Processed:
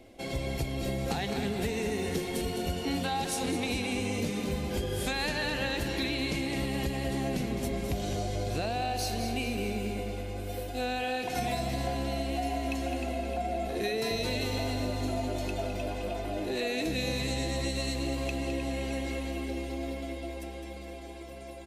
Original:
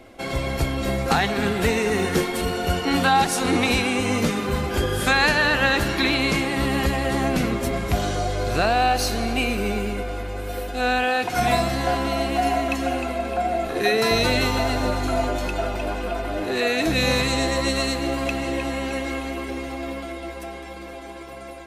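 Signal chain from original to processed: peaking EQ 1.3 kHz -11.5 dB 0.97 oct; feedback delay 210 ms, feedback 46%, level -9 dB; compression, threshold -22 dBFS, peak gain reduction 6.5 dB; trim -5.5 dB

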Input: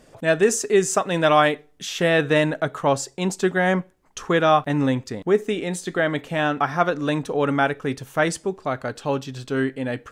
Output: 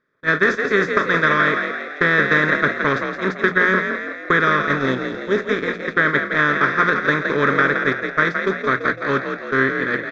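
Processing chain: spectral levelling over time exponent 0.4; recorder AGC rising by 5.7 dB/s; time-frequency box 4.76–5.37 s, 980–2500 Hz -9 dB; gate -14 dBFS, range -47 dB; peaking EQ 2.1 kHz +9.5 dB 2.3 oct; hum notches 60/120/180 Hz; compression, threshold -8 dBFS, peak gain reduction 6 dB; distance through air 210 m; static phaser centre 2.8 kHz, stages 6; on a send: frequency-shifting echo 168 ms, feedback 54%, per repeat +42 Hz, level -6.5 dB

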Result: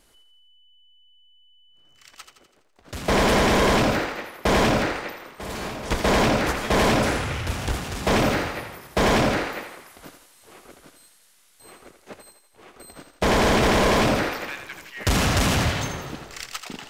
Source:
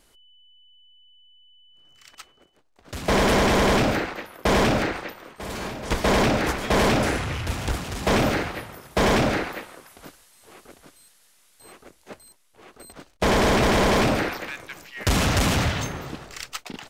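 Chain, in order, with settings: thinning echo 83 ms, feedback 54%, high-pass 340 Hz, level -8 dB

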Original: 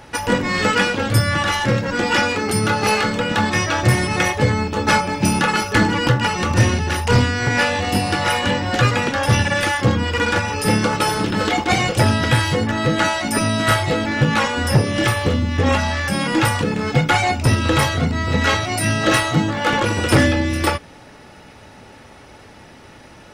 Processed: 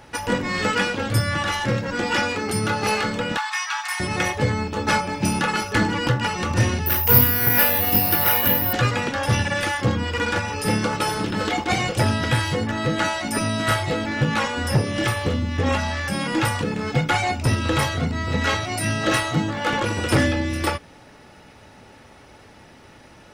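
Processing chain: word length cut 12-bit, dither none; 3.37–4.00 s: steep high-pass 810 Hz 72 dB/octave; 6.86–8.73 s: careless resampling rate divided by 3×, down filtered, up zero stuff; trim -4.5 dB

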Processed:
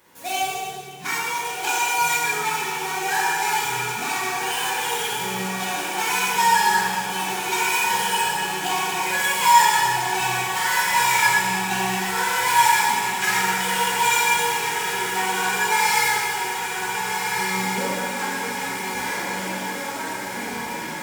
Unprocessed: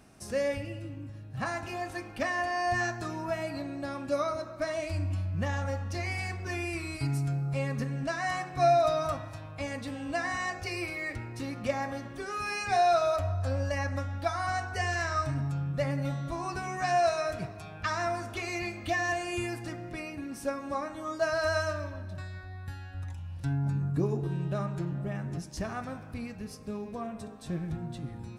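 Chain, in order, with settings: median filter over 15 samples; tilt EQ +4.5 dB/octave; reverberation RT60 2.6 s, pre-delay 4 ms, DRR -7.5 dB; speed mistake 33 rpm record played at 45 rpm; echo that smears into a reverb 1492 ms, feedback 66%, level -4.5 dB; trim +2 dB

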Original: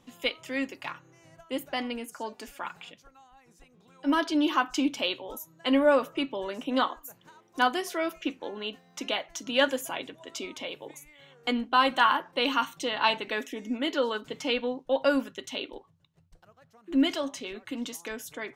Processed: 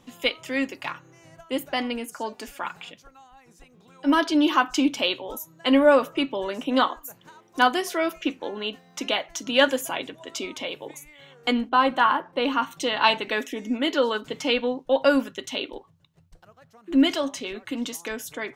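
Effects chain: 11.69–12.71 s: treble shelf 2.2 kHz -11.5 dB; trim +5 dB

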